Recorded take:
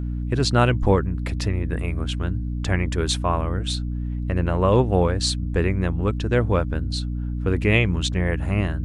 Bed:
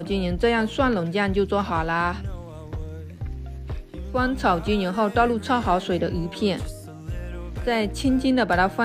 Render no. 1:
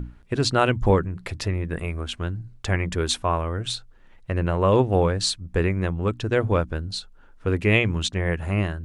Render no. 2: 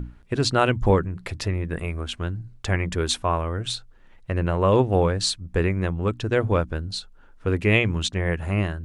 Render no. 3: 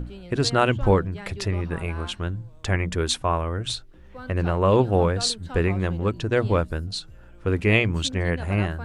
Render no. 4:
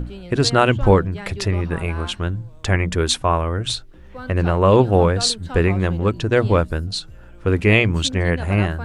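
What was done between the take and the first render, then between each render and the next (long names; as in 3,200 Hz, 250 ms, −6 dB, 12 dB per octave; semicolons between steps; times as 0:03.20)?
mains-hum notches 60/120/180/240/300 Hz
no processing that can be heard
mix in bed −17.5 dB
level +5 dB; brickwall limiter −2 dBFS, peak gain reduction 1.5 dB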